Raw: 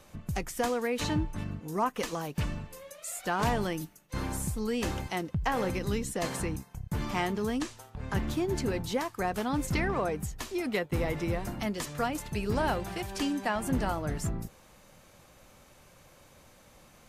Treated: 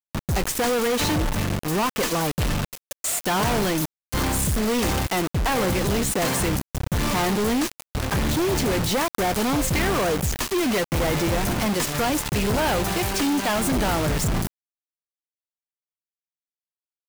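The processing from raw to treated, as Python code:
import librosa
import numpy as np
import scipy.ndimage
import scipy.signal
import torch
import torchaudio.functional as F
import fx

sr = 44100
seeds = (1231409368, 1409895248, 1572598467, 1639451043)

y = fx.quant_companded(x, sr, bits=2)
y = y * librosa.db_to_amplitude(4.5)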